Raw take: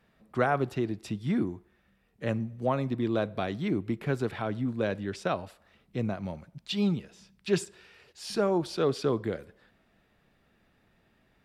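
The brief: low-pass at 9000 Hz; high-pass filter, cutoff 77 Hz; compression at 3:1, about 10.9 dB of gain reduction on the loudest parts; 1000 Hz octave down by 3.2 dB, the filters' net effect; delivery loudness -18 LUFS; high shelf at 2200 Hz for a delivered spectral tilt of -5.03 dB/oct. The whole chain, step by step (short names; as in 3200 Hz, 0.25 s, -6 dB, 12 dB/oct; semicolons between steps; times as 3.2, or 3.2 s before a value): HPF 77 Hz; LPF 9000 Hz; bell 1000 Hz -5.5 dB; high shelf 2200 Hz +3.5 dB; compressor 3:1, threshold -37 dBFS; gain +22 dB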